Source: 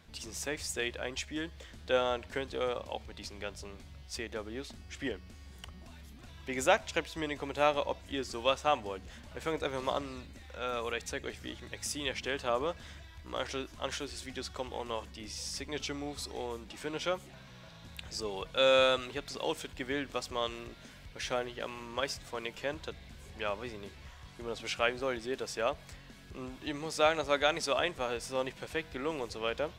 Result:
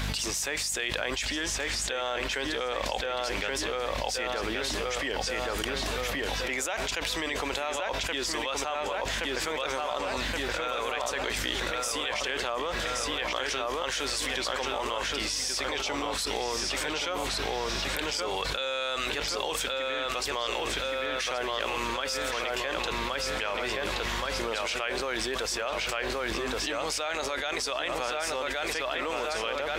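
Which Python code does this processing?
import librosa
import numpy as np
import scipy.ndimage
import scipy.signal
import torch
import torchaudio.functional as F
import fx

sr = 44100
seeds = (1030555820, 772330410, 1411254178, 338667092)

p1 = fx.highpass(x, sr, hz=930.0, slope=6)
p2 = fx.add_hum(p1, sr, base_hz=50, snr_db=22)
p3 = p2 + fx.echo_filtered(p2, sr, ms=1123, feedback_pct=49, hz=3800.0, wet_db=-4.0, dry=0)
p4 = fx.env_flatten(p3, sr, amount_pct=100)
y = F.gain(torch.from_numpy(p4), -6.0).numpy()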